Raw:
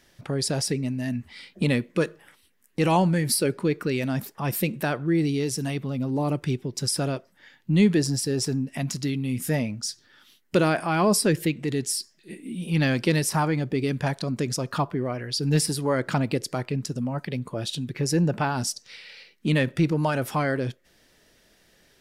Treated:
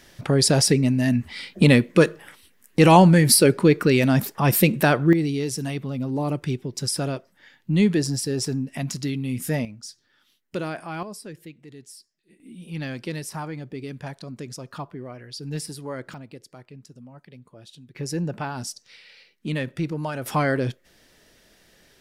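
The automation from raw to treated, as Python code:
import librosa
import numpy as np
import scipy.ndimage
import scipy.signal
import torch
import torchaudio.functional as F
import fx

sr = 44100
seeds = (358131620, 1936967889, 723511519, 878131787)

y = fx.gain(x, sr, db=fx.steps((0.0, 8.0), (5.13, 0.0), (9.65, -8.5), (11.03, -17.5), (12.4, -9.0), (16.14, -16.5), (17.95, -5.0), (20.26, 3.0)))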